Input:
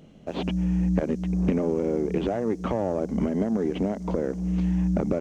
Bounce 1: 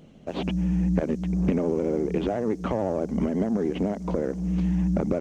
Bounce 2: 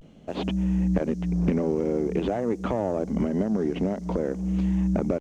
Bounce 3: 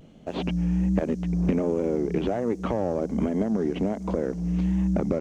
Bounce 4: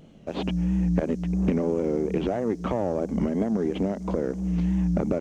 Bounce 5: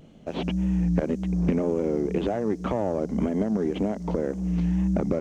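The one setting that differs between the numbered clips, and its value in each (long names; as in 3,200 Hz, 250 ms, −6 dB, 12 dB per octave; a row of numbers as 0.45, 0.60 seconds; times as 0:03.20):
pitch vibrato, speed: 14, 0.48, 1.3, 3, 1.9 Hertz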